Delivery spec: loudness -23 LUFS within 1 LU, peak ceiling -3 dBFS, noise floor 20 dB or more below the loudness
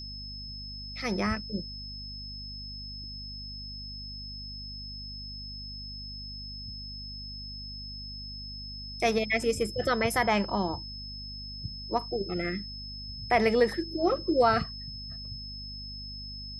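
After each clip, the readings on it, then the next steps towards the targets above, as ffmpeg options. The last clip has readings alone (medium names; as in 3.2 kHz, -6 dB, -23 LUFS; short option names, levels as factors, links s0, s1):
hum 50 Hz; highest harmonic 250 Hz; hum level -41 dBFS; steady tone 5.2 kHz; tone level -40 dBFS; loudness -32.0 LUFS; peak level -12.0 dBFS; loudness target -23.0 LUFS
-> -af "bandreject=f=50:t=h:w=6,bandreject=f=100:t=h:w=6,bandreject=f=150:t=h:w=6,bandreject=f=200:t=h:w=6,bandreject=f=250:t=h:w=6"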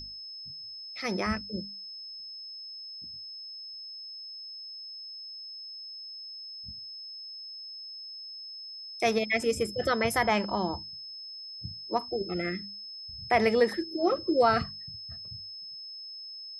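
hum not found; steady tone 5.2 kHz; tone level -40 dBFS
-> -af "bandreject=f=5200:w=30"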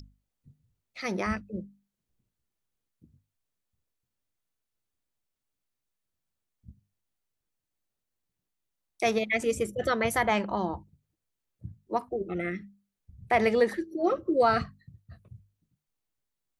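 steady tone not found; loudness -28.5 LUFS; peak level -12.5 dBFS; loudness target -23.0 LUFS
-> -af "volume=1.88"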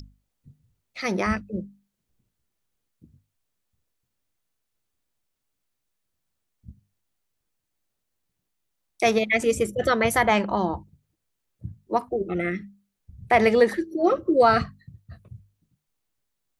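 loudness -23.0 LUFS; peak level -7.0 dBFS; noise floor -80 dBFS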